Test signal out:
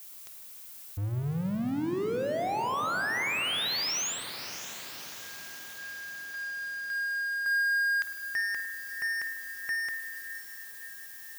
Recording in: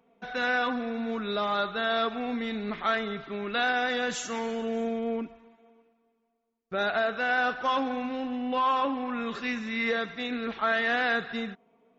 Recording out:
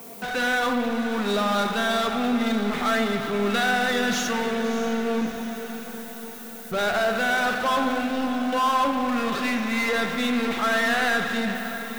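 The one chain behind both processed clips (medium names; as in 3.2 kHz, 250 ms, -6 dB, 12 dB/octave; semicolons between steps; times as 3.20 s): steep low-pass 6.8 kHz 72 dB/octave; added noise violet -65 dBFS; power-law waveshaper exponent 0.5; echo that smears into a reverb 606 ms, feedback 60%, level -11.5 dB; spring tank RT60 2 s, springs 49 ms, chirp 60 ms, DRR 7 dB; trim -1.5 dB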